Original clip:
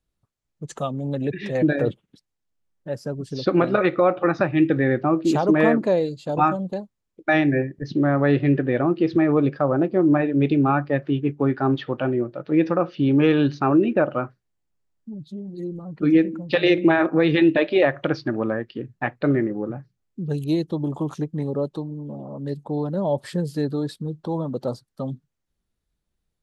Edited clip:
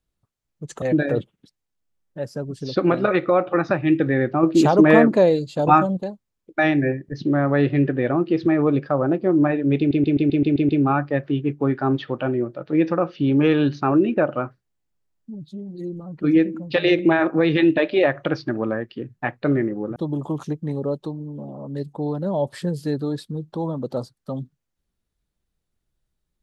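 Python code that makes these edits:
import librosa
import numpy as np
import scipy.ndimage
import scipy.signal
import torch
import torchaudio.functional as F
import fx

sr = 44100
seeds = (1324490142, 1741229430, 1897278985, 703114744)

y = fx.edit(x, sr, fx.cut(start_s=0.82, length_s=0.7),
    fx.clip_gain(start_s=5.13, length_s=1.54, db=4.5),
    fx.stutter(start_s=10.48, slice_s=0.13, count=8),
    fx.cut(start_s=19.75, length_s=0.92), tone=tone)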